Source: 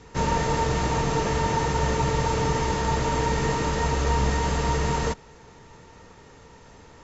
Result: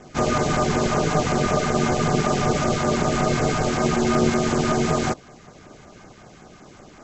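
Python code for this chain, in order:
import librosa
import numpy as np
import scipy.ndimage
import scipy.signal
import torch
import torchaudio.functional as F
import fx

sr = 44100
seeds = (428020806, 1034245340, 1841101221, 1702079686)

y = x * np.sin(2.0 * np.pi * 300.0 * np.arange(len(x)) / sr)
y = fx.filter_lfo_notch(y, sr, shape='saw_down', hz=5.3, low_hz=320.0, high_hz=4700.0, q=1.1)
y = y * 10.0 ** (7.0 / 20.0)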